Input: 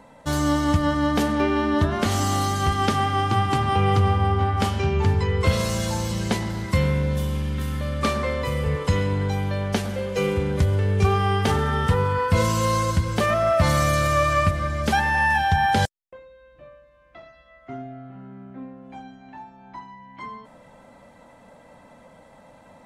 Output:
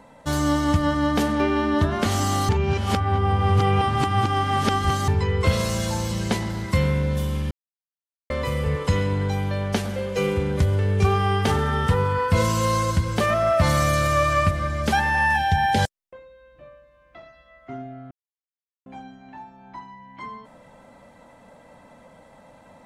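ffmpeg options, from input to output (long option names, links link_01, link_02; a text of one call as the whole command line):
ffmpeg -i in.wav -filter_complex "[0:a]asplit=3[link_01][link_02][link_03];[link_01]afade=type=out:start_time=15.36:duration=0.02[link_04];[link_02]asuperstop=centerf=1200:order=4:qfactor=1.9,afade=type=in:start_time=15.36:duration=0.02,afade=type=out:start_time=15.77:duration=0.02[link_05];[link_03]afade=type=in:start_time=15.77:duration=0.02[link_06];[link_04][link_05][link_06]amix=inputs=3:normalize=0,asplit=7[link_07][link_08][link_09][link_10][link_11][link_12][link_13];[link_07]atrim=end=2.492[link_14];[link_08]atrim=start=2.488:end=5.082,asetpts=PTS-STARTPTS,areverse[link_15];[link_09]atrim=start=5.078:end=7.51,asetpts=PTS-STARTPTS,afade=type=out:start_time=2.428:duration=0.004:curve=hsin[link_16];[link_10]atrim=start=7.51:end=8.3,asetpts=PTS-STARTPTS,volume=0[link_17];[link_11]atrim=start=8.3:end=18.11,asetpts=PTS-STARTPTS,afade=type=in:duration=0.004:curve=hsin,afade=type=out:start_time=9.806:duration=0.004:curve=hsin[link_18];[link_12]atrim=start=18.11:end=18.86,asetpts=PTS-STARTPTS,volume=0[link_19];[link_13]atrim=start=18.86,asetpts=PTS-STARTPTS,afade=type=in:duration=0.004:curve=hsin[link_20];[link_14][link_15]acrossfade=duration=0.004:curve1=hsin:curve2=hsin[link_21];[link_16][link_17][link_18][link_19][link_20]concat=n=5:v=0:a=1[link_22];[link_21][link_22]acrossfade=duration=0.004:curve1=hsin:curve2=hsin" out.wav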